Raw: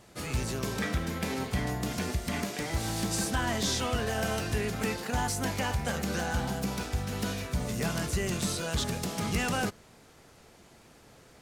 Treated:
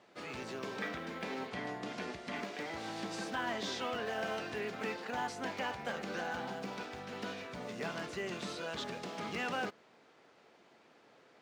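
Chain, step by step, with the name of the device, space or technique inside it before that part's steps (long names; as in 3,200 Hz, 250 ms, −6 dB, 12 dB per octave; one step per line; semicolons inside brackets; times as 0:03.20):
early digital voice recorder (band-pass filter 290–3,600 Hz; one scale factor per block 7 bits)
0:01.50–0:02.37: low-pass filter 11,000 Hz 12 dB per octave
level −4.5 dB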